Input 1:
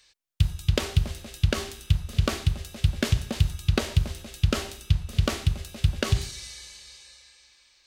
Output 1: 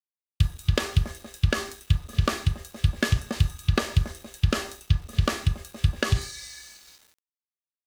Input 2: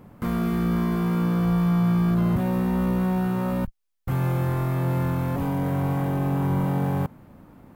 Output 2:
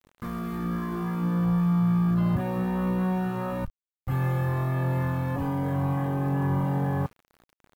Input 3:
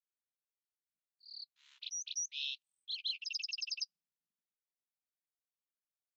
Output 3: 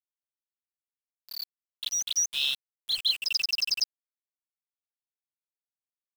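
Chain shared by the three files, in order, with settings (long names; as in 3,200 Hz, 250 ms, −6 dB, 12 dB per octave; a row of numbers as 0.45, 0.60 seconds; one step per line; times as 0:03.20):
noise reduction from a noise print of the clip's start 7 dB
hollow resonant body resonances 1,200/1,700 Hz, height 15 dB, ringing for 90 ms
centre clipping without the shift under −47 dBFS
loudness normalisation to −27 LKFS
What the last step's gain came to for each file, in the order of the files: +0.5, −1.0, +12.0 decibels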